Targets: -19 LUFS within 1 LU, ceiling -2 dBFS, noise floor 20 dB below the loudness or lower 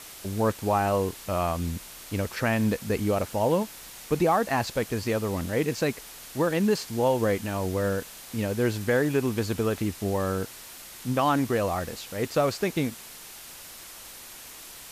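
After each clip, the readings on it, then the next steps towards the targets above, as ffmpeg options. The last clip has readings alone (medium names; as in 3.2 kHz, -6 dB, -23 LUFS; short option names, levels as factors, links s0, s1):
noise floor -44 dBFS; noise floor target -47 dBFS; loudness -27.0 LUFS; peak level -12.5 dBFS; loudness target -19.0 LUFS
-> -af "afftdn=nr=6:nf=-44"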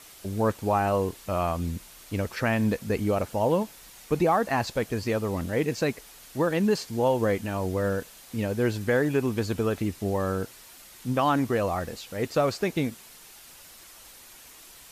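noise floor -49 dBFS; loudness -27.0 LUFS; peak level -12.5 dBFS; loudness target -19.0 LUFS
-> -af "volume=2.51"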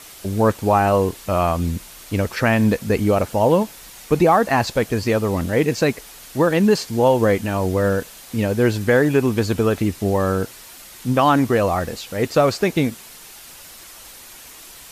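loudness -19.0 LUFS; peak level -4.5 dBFS; noise floor -41 dBFS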